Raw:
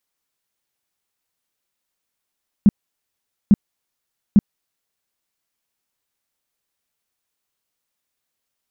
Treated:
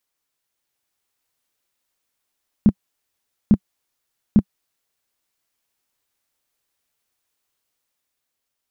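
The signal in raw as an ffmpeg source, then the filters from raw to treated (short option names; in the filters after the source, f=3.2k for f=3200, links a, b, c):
-f lavfi -i "aevalsrc='0.501*sin(2*PI*204*mod(t,0.85))*lt(mod(t,0.85),6/204)':d=2.55:s=44100"
-af "equalizer=f=190:t=o:w=0.23:g=-7,dynaudnorm=f=130:g=13:m=3dB"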